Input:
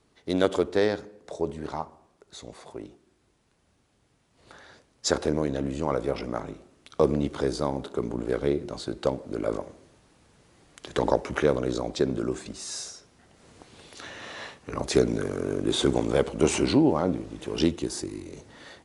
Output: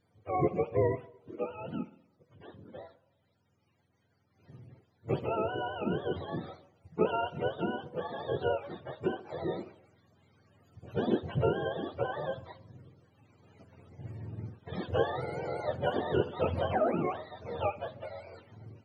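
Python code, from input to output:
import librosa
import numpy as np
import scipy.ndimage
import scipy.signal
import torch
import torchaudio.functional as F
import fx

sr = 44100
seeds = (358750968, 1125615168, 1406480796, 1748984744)

y = fx.octave_mirror(x, sr, pivot_hz=450.0)
y = fx.echo_wet_bandpass(y, sr, ms=61, feedback_pct=35, hz=1600.0, wet_db=-17.5)
y = y * 10.0 ** (-3.5 / 20.0)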